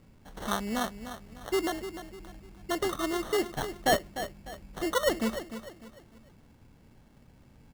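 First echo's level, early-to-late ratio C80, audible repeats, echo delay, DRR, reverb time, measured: -11.0 dB, no reverb, 3, 300 ms, no reverb, no reverb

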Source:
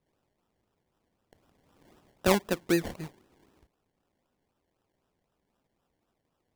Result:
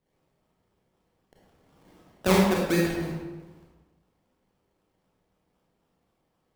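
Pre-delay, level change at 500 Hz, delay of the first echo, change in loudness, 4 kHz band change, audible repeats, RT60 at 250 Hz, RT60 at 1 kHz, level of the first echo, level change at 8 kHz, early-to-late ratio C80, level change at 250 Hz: 27 ms, +3.5 dB, no echo, +3.5 dB, +3.5 dB, no echo, 1.3 s, 1.2 s, no echo, +2.5 dB, 2.5 dB, +5.5 dB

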